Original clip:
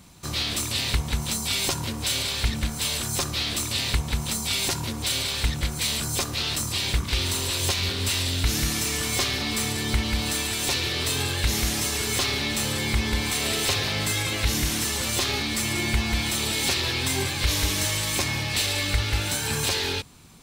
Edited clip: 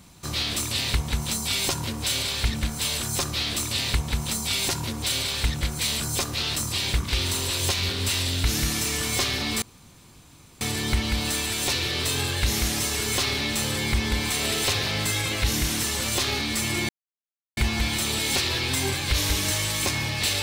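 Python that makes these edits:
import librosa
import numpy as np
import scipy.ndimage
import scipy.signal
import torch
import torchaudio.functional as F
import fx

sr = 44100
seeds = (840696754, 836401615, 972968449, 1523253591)

y = fx.edit(x, sr, fx.insert_room_tone(at_s=9.62, length_s=0.99),
    fx.insert_silence(at_s=15.9, length_s=0.68), tone=tone)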